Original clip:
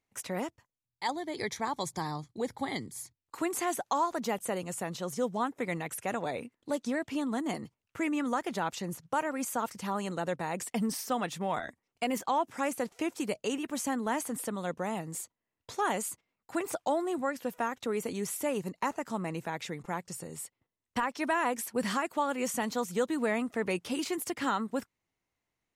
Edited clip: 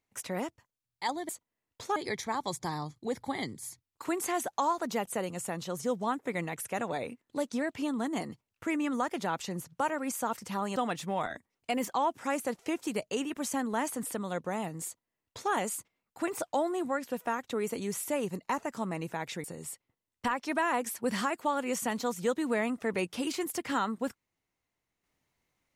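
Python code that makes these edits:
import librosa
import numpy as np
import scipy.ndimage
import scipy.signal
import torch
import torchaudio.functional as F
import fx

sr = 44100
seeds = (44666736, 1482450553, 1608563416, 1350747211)

y = fx.edit(x, sr, fx.cut(start_s=10.09, length_s=1.0),
    fx.duplicate(start_s=15.18, length_s=0.67, to_s=1.29),
    fx.cut(start_s=19.77, length_s=0.39), tone=tone)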